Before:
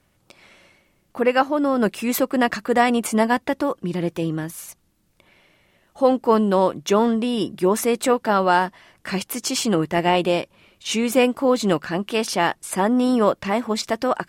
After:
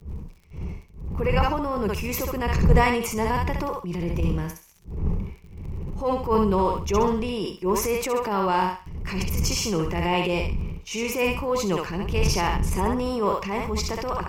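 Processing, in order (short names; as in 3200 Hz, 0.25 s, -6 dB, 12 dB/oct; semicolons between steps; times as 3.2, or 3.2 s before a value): wind noise 93 Hz -22 dBFS; gate -30 dBFS, range -19 dB; ripple EQ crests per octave 0.79, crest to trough 10 dB; crackle 26/s -37 dBFS; on a send: thinning echo 66 ms, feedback 31%, high-pass 640 Hz, level -4 dB; on the sum: transient shaper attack -8 dB, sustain +4 dB; gain -6 dB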